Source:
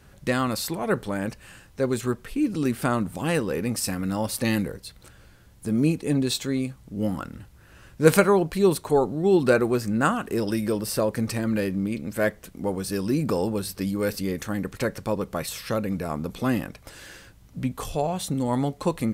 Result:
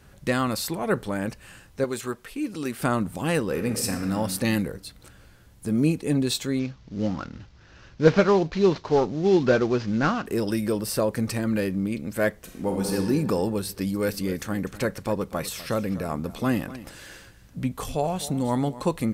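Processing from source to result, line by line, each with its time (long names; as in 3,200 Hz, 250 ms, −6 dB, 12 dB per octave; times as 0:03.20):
0:01.84–0:02.80: low-shelf EQ 290 Hz −11.5 dB
0:03.46–0:04.13: thrown reverb, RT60 1.7 s, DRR 5.5 dB
0:06.59–0:10.26: variable-slope delta modulation 32 kbit/s
0:12.42–0:12.95: thrown reverb, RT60 1.9 s, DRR 0.5 dB
0:13.69–0:18.81: single-tap delay 248 ms −16 dB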